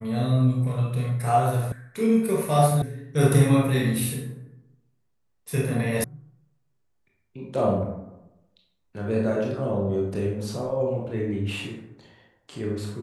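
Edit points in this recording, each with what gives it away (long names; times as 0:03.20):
0:01.72: cut off before it has died away
0:02.82: cut off before it has died away
0:06.04: cut off before it has died away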